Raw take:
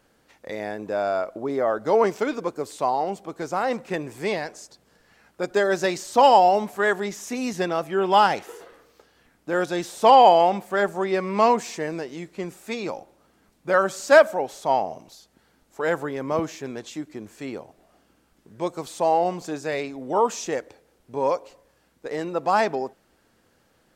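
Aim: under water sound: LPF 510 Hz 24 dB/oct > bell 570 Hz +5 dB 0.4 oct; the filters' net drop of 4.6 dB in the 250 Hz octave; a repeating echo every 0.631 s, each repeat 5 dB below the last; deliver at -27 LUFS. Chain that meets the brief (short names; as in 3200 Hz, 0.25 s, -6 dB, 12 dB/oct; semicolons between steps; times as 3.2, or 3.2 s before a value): LPF 510 Hz 24 dB/oct; bell 250 Hz -7 dB; bell 570 Hz +5 dB 0.4 oct; feedback echo 0.631 s, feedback 56%, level -5 dB; gain +1 dB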